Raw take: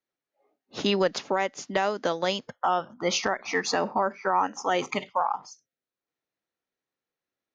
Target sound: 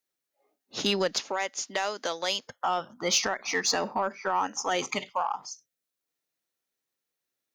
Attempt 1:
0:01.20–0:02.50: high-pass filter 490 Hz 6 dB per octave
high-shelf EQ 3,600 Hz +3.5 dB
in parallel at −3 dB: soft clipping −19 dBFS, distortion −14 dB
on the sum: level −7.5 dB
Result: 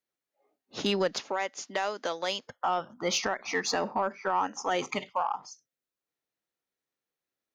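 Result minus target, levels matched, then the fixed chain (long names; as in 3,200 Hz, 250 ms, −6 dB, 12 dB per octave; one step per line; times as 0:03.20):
8,000 Hz band −4.5 dB
0:01.20–0:02.50: high-pass filter 490 Hz 6 dB per octave
high-shelf EQ 3,600 Hz +13 dB
in parallel at −3 dB: soft clipping −19 dBFS, distortion −12 dB
on the sum: level −7.5 dB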